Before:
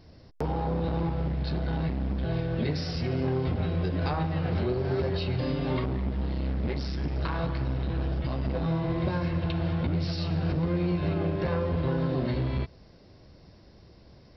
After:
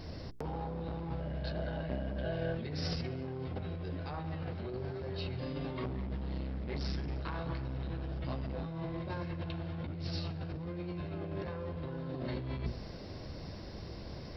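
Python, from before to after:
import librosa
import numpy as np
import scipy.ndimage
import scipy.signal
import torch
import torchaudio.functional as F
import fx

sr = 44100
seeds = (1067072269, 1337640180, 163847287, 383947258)

y = fx.hum_notches(x, sr, base_hz=60, count=7)
y = fx.over_compress(y, sr, threshold_db=-38.0, ratio=-1.0)
y = fx.small_body(y, sr, hz=(600.0, 1600.0, 2900.0), ring_ms=45, db=fx.line((1.19, 13.0), (2.53, 18.0)), at=(1.19, 2.53), fade=0.02)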